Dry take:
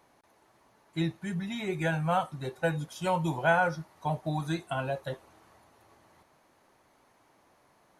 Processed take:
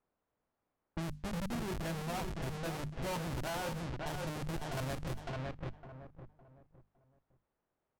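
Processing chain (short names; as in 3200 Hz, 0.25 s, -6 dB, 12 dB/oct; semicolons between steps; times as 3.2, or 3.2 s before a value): Schmitt trigger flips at -31 dBFS; notches 50/100/150/200/250 Hz; on a send: feedback echo 0.559 s, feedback 31%, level -8 dB; on the sum: added noise white -76 dBFS; low-pass opened by the level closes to 910 Hz, open at -32 dBFS; limiter -34 dBFS, peak gain reduction 9 dB; gain +2.5 dB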